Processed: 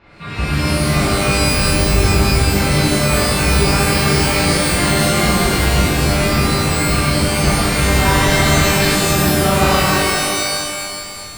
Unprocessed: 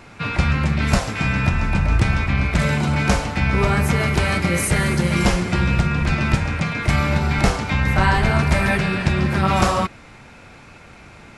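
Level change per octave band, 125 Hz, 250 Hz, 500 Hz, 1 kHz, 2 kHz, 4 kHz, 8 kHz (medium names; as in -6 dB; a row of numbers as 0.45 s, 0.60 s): +2.5 dB, +4.0 dB, +7.5 dB, +4.5 dB, +4.5 dB, +12.0 dB, +13.0 dB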